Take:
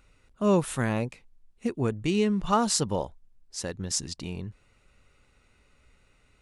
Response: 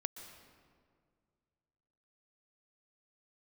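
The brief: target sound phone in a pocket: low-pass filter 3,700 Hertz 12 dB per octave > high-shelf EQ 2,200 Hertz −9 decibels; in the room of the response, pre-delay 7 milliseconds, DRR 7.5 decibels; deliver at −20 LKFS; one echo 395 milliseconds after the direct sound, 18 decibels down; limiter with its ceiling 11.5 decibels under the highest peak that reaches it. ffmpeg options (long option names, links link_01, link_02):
-filter_complex "[0:a]alimiter=limit=-19.5dB:level=0:latency=1,aecho=1:1:395:0.126,asplit=2[link_01][link_02];[1:a]atrim=start_sample=2205,adelay=7[link_03];[link_02][link_03]afir=irnorm=-1:irlink=0,volume=-6.5dB[link_04];[link_01][link_04]amix=inputs=2:normalize=0,lowpass=3700,highshelf=frequency=2200:gain=-9,volume=13dB"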